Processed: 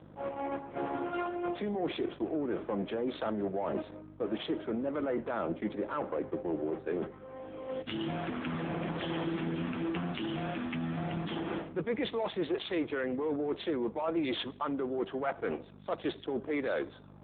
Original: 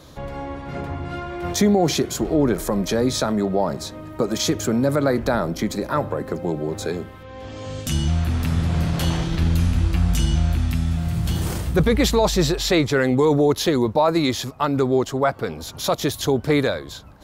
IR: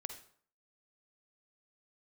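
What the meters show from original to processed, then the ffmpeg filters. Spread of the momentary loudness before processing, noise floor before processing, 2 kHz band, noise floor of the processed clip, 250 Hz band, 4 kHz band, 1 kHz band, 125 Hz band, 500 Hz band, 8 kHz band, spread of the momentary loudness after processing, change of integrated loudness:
12 LU, −39 dBFS, −11.5 dB, −52 dBFS, −12.0 dB, −15.5 dB, −12.0 dB, −20.5 dB, −12.0 dB, below −40 dB, 5 LU, −13.5 dB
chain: -filter_complex "[0:a]aemphasis=mode=reproduction:type=50fm,agate=range=-12dB:threshold=-29dB:ratio=16:detection=peak,highpass=frequency=240:width=0.5412,highpass=frequency=240:width=1.3066,alimiter=limit=-13.5dB:level=0:latency=1:release=35,areverse,acompressor=threshold=-36dB:ratio=6,areverse,crystalizer=i=4:c=0,asoftclip=type=tanh:threshold=-25.5dB,aeval=exprs='val(0)+0.00316*(sin(2*PI*50*n/s)+sin(2*PI*2*50*n/s)/2+sin(2*PI*3*50*n/s)/3+sin(2*PI*4*50*n/s)/4+sin(2*PI*5*50*n/s)/5)':channel_layout=same,adynamicsmooth=sensitivity=7:basefreq=1100,asplit=2[link_01][link_02];[1:a]atrim=start_sample=2205,adelay=6[link_03];[link_02][link_03]afir=irnorm=-1:irlink=0,volume=-9dB[link_04];[link_01][link_04]amix=inputs=2:normalize=0,volume=5.5dB" -ar 8000 -c:a libopencore_amrnb -b:a 6700

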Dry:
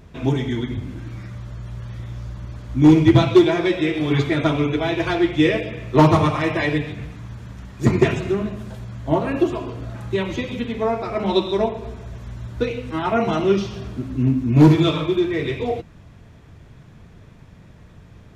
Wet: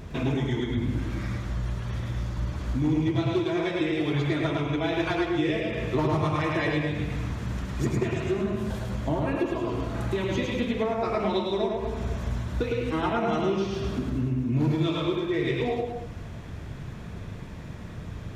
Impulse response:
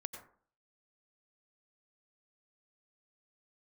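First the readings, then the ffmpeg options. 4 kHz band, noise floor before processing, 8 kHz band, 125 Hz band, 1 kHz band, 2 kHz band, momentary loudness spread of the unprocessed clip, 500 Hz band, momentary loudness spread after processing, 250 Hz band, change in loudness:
−6.0 dB, −46 dBFS, can't be measured, −6.5 dB, −6.5 dB, −5.5 dB, 20 LU, −7.0 dB, 13 LU, −8.0 dB, −8.0 dB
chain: -filter_complex "[0:a]acompressor=threshold=-31dB:ratio=6,asplit=2[link_01][link_02];[1:a]atrim=start_sample=2205,adelay=107[link_03];[link_02][link_03]afir=irnorm=-1:irlink=0,volume=0.5dB[link_04];[link_01][link_04]amix=inputs=2:normalize=0,volume=5dB"

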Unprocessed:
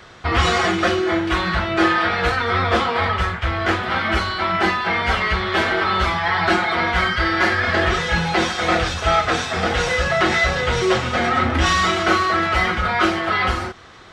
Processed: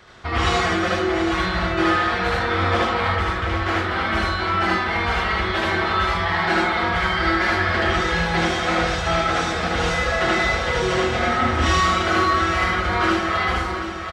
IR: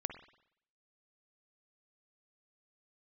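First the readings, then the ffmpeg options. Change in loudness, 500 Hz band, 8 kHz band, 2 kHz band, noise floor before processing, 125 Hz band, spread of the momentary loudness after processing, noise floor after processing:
−1.5 dB, −1.5 dB, −2.0 dB, −2.0 dB, −30 dBFS, −1.0 dB, 3 LU, −26 dBFS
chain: -filter_complex "[0:a]aecho=1:1:730|1460|2190|2920|3650|4380:0.316|0.177|0.0992|0.0555|0.0311|0.0174,asplit=2[link_01][link_02];[1:a]atrim=start_sample=2205,asetrate=26901,aresample=44100,adelay=76[link_03];[link_02][link_03]afir=irnorm=-1:irlink=0,volume=-0.5dB[link_04];[link_01][link_04]amix=inputs=2:normalize=0,volume=-6dB"

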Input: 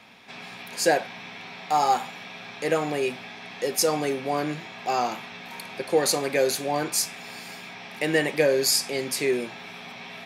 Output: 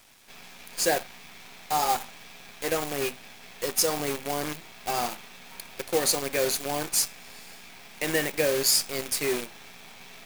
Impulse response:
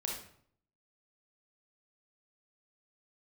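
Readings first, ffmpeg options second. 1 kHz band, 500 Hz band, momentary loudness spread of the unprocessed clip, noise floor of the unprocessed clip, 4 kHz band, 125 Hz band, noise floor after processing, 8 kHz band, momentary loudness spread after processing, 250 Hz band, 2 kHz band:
−4.5 dB, −4.5 dB, 17 LU, −42 dBFS, −0.5 dB, −4.0 dB, −48 dBFS, +1.0 dB, 22 LU, −5.0 dB, −3.0 dB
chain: -af "acrusher=bits=3:mode=log:mix=0:aa=0.000001,highshelf=frequency=4500:gain=6.5,acrusher=bits=5:dc=4:mix=0:aa=0.000001,volume=-4.5dB"

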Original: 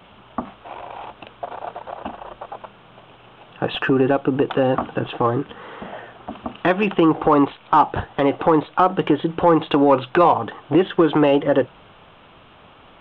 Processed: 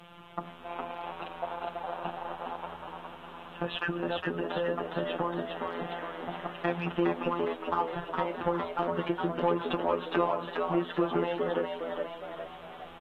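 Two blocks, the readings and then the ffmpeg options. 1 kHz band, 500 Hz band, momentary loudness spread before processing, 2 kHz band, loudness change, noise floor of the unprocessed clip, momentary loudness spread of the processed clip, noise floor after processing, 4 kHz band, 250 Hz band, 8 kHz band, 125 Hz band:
−12.5 dB, −11.5 dB, 19 LU, −9.0 dB, −14.0 dB, −48 dBFS, 12 LU, −48 dBFS, −8.5 dB, −14.0 dB, can't be measured, −12.0 dB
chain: -filter_complex "[0:a]acompressor=threshold=-28dB:ratio=2.5,afftfilt=real='hypot(re,im)*cos(PI*b)':imag='0':win_size=1024:overlap=0.75,acrusher=bits=11:mix=0:aa=0.000001,asplit=2[link_01][link_02];[link_02]asplit=7[link_03][link_04][link_05][link_06][link_07][link_08][link_09];[link_03]adelay=411,afreqshift=76,volume=-4.5dB[link_10];[link_04]adelay=822,afreqshift=152,volume=-10.3dB[link_11];[link_05]adelay=1233,afreqshift=228,volume=-16.2dB[link_12];[link_06]adelay=1644,afreqshift=304,volume=-22dB[link_13];[link_07]adelay=2055,afreqshift=380,volume=-27.9dB[link_14];[link_08]adelay=2466,afreqshift=456,volume=-33.7dB[link_15];[link_09]adelay=2877,afreqshift=532,volume=-39.6dB[link_16];[link_10][link_11][link_12][link_13][link_14][link_15][link_16]amix=inputs=7:normalize=0[link_17];[link_01][link_17]amix=inputs=2:normalize=0,volume=-1dB" -ar 32000 -c:a aac -b:a 48k

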